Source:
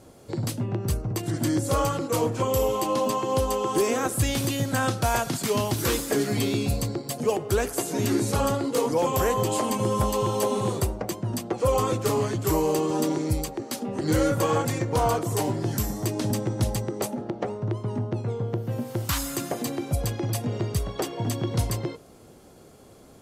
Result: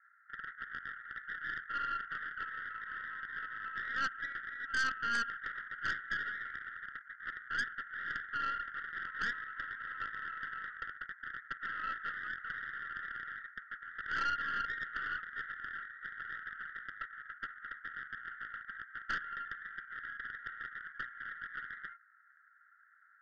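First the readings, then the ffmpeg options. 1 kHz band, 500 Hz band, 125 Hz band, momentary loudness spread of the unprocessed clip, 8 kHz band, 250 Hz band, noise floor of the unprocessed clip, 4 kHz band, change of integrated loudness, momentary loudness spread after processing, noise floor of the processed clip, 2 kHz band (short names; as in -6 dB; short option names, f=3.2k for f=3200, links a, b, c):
-11.5 dB, -38.5 dB, -36.5 dB, 6 LU, under -25 dB, -33.0 dB, -50 dBFS, -14.5 dB, -13.5 dB, 10 LU, -64 dBFS, +2.0 dB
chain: -af "acrusher=bits=2:mode=log:mix=0:aa=0.000001,asuperpass=centerf=1600:order=12:qfactor=2.6,aeval=exprs='0.0794*(cos(1*acos(clip(val(0)/0.0794,-1,1)))-cos(1*PI/2))+0.0178*(cos(5*acos(clip(val(0)/0.0794,-1,1)))-cos(5*PI/2))+0.01*(cos(6*acos(clip(val(0)/0.0794,-1,1)))-cos(6*PI/2))':c=same,volume=-3dB"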